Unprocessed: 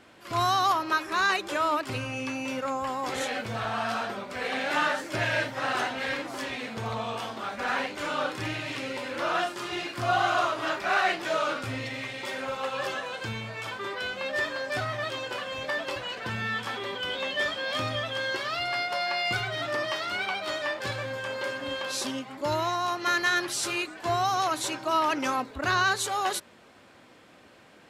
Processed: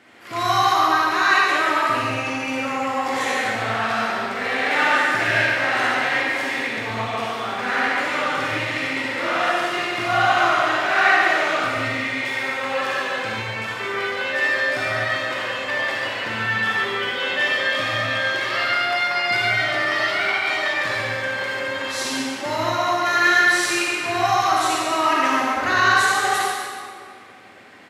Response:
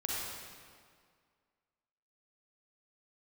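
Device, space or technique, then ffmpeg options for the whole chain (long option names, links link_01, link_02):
PA in a hall: -filter_complex "[0:a]highpass=120,equalizer=frequency=2000:width_type=o:width=0.54:gain=7.5,aecho=1:1:143:0.422[link_01];[1:a]atrim=start_sample=2205[link_02];[link_01][link_02]afir=irnorm=-1:irlink=0,volume=1.5dB"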